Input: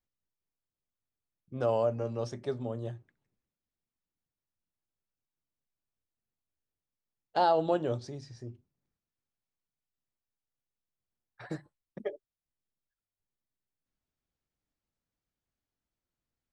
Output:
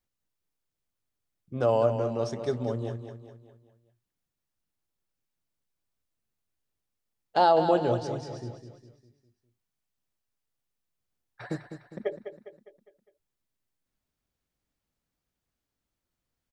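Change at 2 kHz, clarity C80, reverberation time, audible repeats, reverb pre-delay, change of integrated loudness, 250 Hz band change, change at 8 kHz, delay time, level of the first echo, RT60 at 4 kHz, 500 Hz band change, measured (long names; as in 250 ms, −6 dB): +5.0 dB, no reverb audible, no reverb audible, 4, no reverb audible, +4.5 dB, +5.0 dB, can't be measured, 203 ms, −9.5 dB, no reverb audible, +5.0 dB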